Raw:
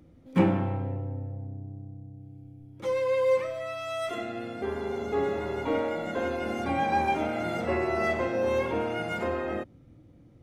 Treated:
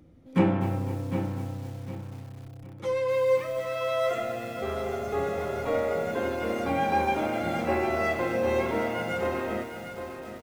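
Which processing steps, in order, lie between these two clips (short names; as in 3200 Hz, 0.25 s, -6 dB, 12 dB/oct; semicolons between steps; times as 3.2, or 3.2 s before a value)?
3.75–6.11 comb 1.6 ms, depth 56%; feedback echo 0.755 s, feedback 31%, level -9 dB; lo-fi delay 0.253 s, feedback 55%, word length 7-bit, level -11 dB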